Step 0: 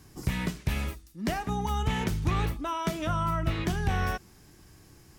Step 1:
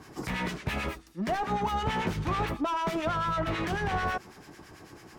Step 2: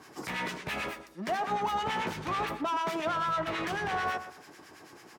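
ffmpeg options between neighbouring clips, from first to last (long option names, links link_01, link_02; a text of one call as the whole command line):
ffmpeg -i in.wav -filter_complex "[0:a]asplit=2[link_01][link_02];[link_02]highpass=frequency=720:poles=1,volume=25dB,asoftclip=type=tanh:threshold=-17dB[link_03];[link_01][link_03]amix=inputs=2:normalize=0,lowpass=frequency=1200:poles=1,volume=-6dB,acrossover=split=1200[link_04][link_05];[link_04]aeval=exprs='val(0)*(1-0.7/2+0.7/2*cos(2*PI*9.1*n/s))':channel_layout=same[link_06];[link_05]aeval=exprs='val(0)*(1-0.7/2-0.7/2*cos(2*PI*9.1*n/s))':channel_layout=same[link_07];[link_06][link_07]amix=inputs=2:normalize=0" out.wav
ffmpeg -i in.wav -filter_complex "[0:a]highpass=frequency=400:poles=1,asplit=2[link_01][link_02];[link_02]adelay=122,lowpass=frequency=2100:poles=1,volume=-10.5dB,asplit=2[link_03][link_04];[link_04]adelay=122,lowpass=frequency=2100:poles=1,volume=0.25,asplit=2[link_05][link_06];[link_06]adelay=122,lowpass=frequency=2100:poles=1,volume=0.25[link_07];[link_01][link_03][link_05][link_07]amix=inputs=4:normalize=0" out.wav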